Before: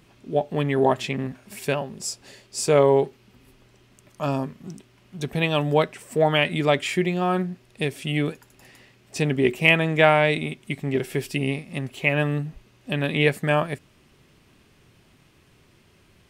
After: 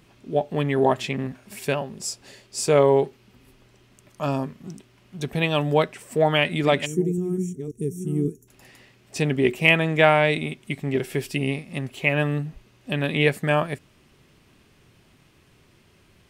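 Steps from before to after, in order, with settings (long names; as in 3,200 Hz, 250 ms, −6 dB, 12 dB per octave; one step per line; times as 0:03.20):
0:06.10–0:08.28: delay that plays each chunk backwards 538 ms, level −7 dB
0:06.85–0:08.48: gain on a spectral selection 460–5,500 Hz −29 dB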